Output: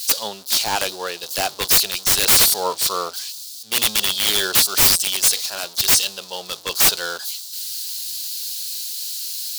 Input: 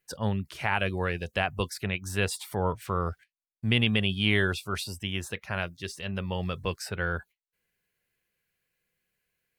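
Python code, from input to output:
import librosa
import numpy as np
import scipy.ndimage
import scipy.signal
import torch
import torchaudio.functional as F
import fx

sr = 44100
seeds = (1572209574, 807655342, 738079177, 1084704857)

y = x + 0.5 * 10.0 ** (-35.5 / 20.0) * np.sign(x)
y = scipy.signal.sosfilt(scipy.signal.butter(2, 560.0, 'highpass', fs=sr, output='sos'), y)
y = fx.high_shelf_res(y, sr, hz=3000.0, db=13.0, q=3.0)
y = (np.mod(10.0 ** (16.0 / 20.0) * y + 1.0, 2.0) - 1.0) / 10.0 ** (16.0 / 20.0)
y = fx.band_widen(y, sr, depth_pct=100)
y = F.gain(torch.from_numpy(y), 6.5).numpy()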